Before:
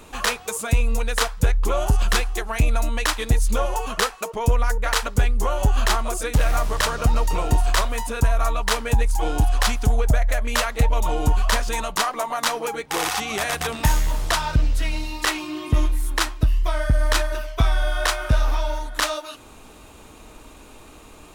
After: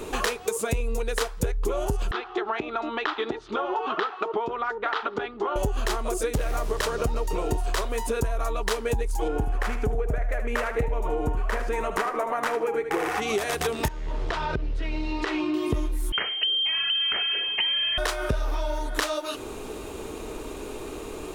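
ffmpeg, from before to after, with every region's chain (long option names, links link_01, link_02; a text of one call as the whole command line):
ffmpeg -i in.wav -filter_complex "[0:a]asettb=1/sr,asplit=3[link_01][link_02][link_03];[link_01]atrim=end=2.114[link_04];[link_02]atrim=start=2.11:end=5.56,asetpts=PTS-STARTPTS,afade=type=in:duration=0.004:curve=qsin,afade=type=out:start_time=3.446:duration=0.004:curve=qsin,acompressor=threshold=-29dB:ratio=2:attack=3.2:release=140:knee=1:detection=peak,highpass=290,equalizer=frequency=330:width_type=q:width=4:gain=6,equalizer=frequency=500:width_type=q:width=4:gain=-9,equalizer=frequency=820:width_type=q:width=4:gain=6,equalizer=frequency=1300:width_type=q:width=4:gain=9,equalizer=frequency=2400:width_type=q:width=4:gain=-3,equalizer=frequency=3500:width_type=q:width=4:gain=4,lowpass=frequency=3600:width=0.5412,lowpass=frequency=3600:width=1.3066[link_05];[link_03]atrim=start=5.556[link_06];[link_04][link_05]acrossfade=duration=0.004:curve1=hsin:curve2=qsin[link_07];[link_07][link_06]acrossfade=duration=0.004:curve1=qsin:curve2=hsin,asettb=1/sr,asplit=3[link_08][link_09][link_10];[link_08]atrim=end=9.284[link_11];[link_09]atrim=start=9.28:end=13.22,asetpts=PTS-STARTPTS,afade=type=in:duration=0.004:curve=qsin,afade=type=out:start_time=3.936:duration=0.004:curve=qsin,highshelf=frequency=2800:width_type=q:width=1.5:gain=-9.5,bandreject=frequency=1000:width=26,aecho=1:1:76|152:0.299|0.0508,atrim=end_sample=173754[link_12];[link_10]atrim=start=13.216[link_13];[link_11][link_12]acrossfade=duration=0.004:curve1=hsin:curve2=qsin[link_14];[link_14][link_13]acrossfade=duration=0.004:curve1=qsin:curve2=hsin,asettb=1/sr,asplit=3[link_15][link_16][link_17];[link_15]atrim=end=13.884[link_18];[link_16]atrim=start=13.88:end=15.54,asetpts=PTS-STARTPTS,afade=type=in:duration=0.004:curve=qsin,afade=type=out:start_time=1.656:duration=0.004:curve=qsin,lowpass=3300,acompressor=threshold=-27dB:ratio=6:attack=3.2:release=140:knee=1:detection=peak[link_19];[link_17]atrim=start=15.536[link_20];[link_18][link_19]acrossfade=duration=0.004:curve1=hsin:curve2=qsin[link_21];[link_21][link_20]acrossfade=duration=0.004:curve1=qsin:curve2=hsin,asettb=1/sr,asplit=3[link_22][link_23][link_24];[link_22]atrim=end=16.124[link_25];[link_23]atrim=start=16.12:end=17.98,asetpts=PTS-STARTPTS,afade=type=in:duration=0.004:curve=qsin,afade=type=out:start_time=1.856:duration=0.004:curve=qsin,acompressor=threshold=-19dB:ratio=2.5:attack=3.2:release=140:knee=1:detection=peak,lowpass=frequency=2700:width_type=q:width=0.5098,lowpass=frequency=2700:width_type=q:width=0.6013,lowpass=frequency=2700:width_type=q:width=0.9,lowpass=frequency=2700:width_type=q:width=2.563,afreqshift=-3200[link_26];[link_24]atrim=start=17.976[link_27];[link_25][link_26]acrossfade=duration=0.004:curve1=hsin:curve2=qsin[link_28];[link_28][link_27]acrossfade=duration=0.004:curve1=qsin:curve2=hsin,equalizer=frequency=400:width_type=o:width=0.67:gain=13,acompressor=threshold=-29dB:ratio=6,volume=5dB" out.wav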